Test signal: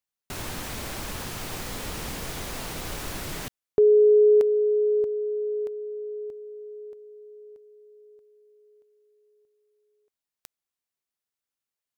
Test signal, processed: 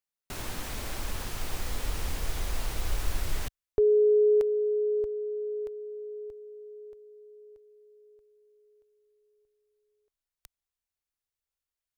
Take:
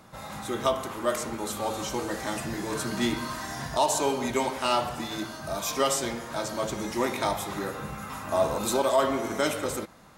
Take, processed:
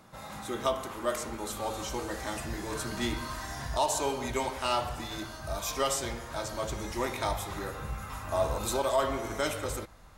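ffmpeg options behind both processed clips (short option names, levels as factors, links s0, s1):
-af "asubboost=boost=9:cutoff=65,volume=0.668"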